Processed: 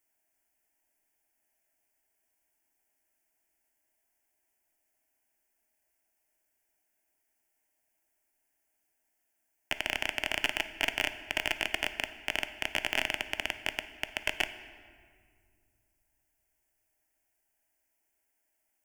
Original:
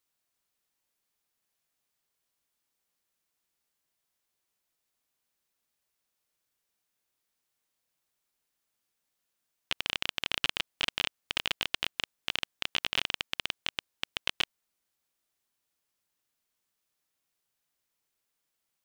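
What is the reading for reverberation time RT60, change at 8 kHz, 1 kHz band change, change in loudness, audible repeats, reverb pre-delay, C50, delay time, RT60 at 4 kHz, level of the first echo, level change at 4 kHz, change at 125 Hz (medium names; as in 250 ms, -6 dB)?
2.0 s, +1.5 dB, +3.0 dB, +0.5 dB, no echo, 4 ms, 12.0 dB, no echo, 1.3 s, no echo, -3.0 dB, -1.5 dB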